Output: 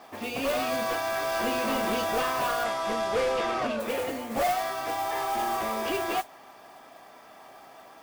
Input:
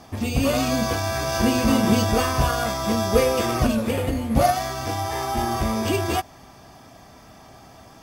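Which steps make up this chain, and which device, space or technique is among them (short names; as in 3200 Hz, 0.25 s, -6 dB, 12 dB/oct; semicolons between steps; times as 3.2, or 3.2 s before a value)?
carbon microphone (BPF 460–3200 Hz; soft clip -22 dBFS, distortion -12 dB; modulation noise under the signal 14 dB); 2.63–3.79 LPF 10000 Hz -> 4800 Hz 12 dB/oct; low shelf 78 Hz +5.5 dB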